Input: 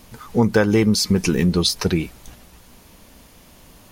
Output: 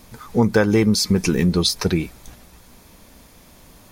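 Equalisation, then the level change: notch 2900 Hz, Q 11; 0.0 dB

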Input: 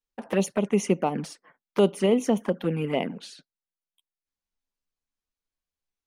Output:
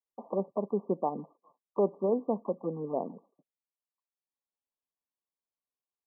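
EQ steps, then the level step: HPF 460 Hz 6 dB/oct; brick-wall FIR low-pass 1200 Hz; -2.5 dB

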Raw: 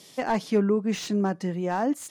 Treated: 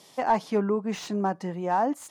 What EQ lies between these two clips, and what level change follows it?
bell 880 Hz +10 dB 1.2 oct; -4.5 dB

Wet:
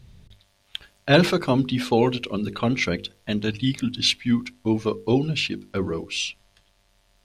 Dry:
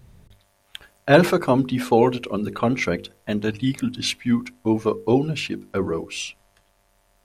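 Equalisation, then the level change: low shelf 380 Hz +9.5 dB; bell 3800 Hz +13.5 dB 2 oct; -8.0 dB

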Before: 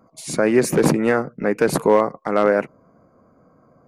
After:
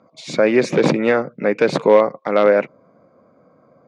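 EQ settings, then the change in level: speaker cabinet 120–6000 Hz, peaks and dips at 550 Hz +6 dB, 2300 Hz +7 dB, 3600 Hz +9 dB; 0.0 dB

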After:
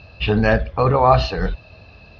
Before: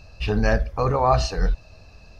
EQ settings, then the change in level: HPF 71 Hz 12 dB/oct; air absorption 290 m; bell 3400 Hz +10 dB 0.94 oct; +6.0 dB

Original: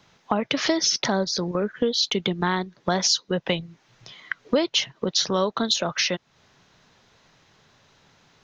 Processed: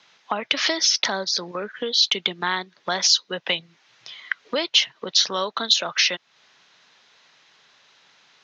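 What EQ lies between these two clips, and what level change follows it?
BPF 120–3700 Hz; tilt +4.5 dB/oct; 0.0 dB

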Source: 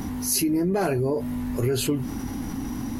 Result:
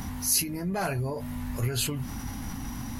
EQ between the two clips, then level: bell 350 Hz -14 dB 1.2 oct; 0.0 dB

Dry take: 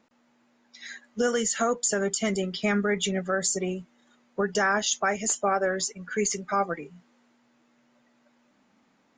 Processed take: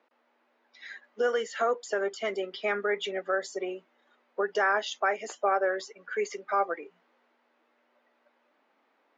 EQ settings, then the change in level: HPF 360 Hz 24 dB/oct; Bessel low-pass 3800 Hz, order 2; air absorption 120 m; 0.0 dB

